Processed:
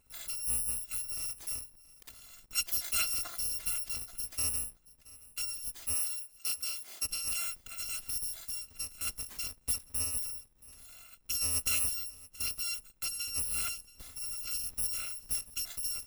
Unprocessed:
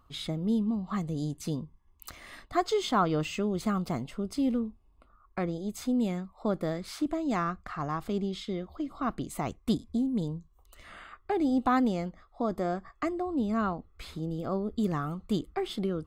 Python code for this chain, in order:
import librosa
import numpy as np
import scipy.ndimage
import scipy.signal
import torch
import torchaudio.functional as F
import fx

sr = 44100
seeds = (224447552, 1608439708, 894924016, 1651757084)

p1 = fx.bit_reversed(x, sr, seeds[0], block=256)
p2 = fx.highpass(p1, sr, hz=fx.line((5.94, 670.0), (7.03, 180.0)), slope=12, at=(5.94, 7.03), fade=0.02)
p3 = p2 + fx.echo_single(p2, sr, ms=676, db=-21.0, dry=0)
y = p3 * librosa.db_to_amplitude(-5.5)